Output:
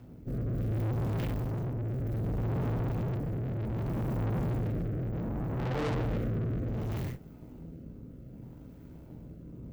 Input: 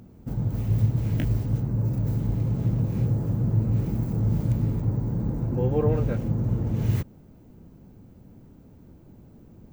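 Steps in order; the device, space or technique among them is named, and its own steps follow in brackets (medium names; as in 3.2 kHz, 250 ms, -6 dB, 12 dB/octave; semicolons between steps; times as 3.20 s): 1.41–2.00 s: high-pass 80 Hz 12 dB/octave; peaking EQ 7.1 kHz -4.5 dB 1.4 oct; gated-style reverb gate 170 ms falling, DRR -7.5 dB; overdriven rotary cabinet (valve stage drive 29 dB, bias 0.7; rotary cabinet horn 0.65 Hz)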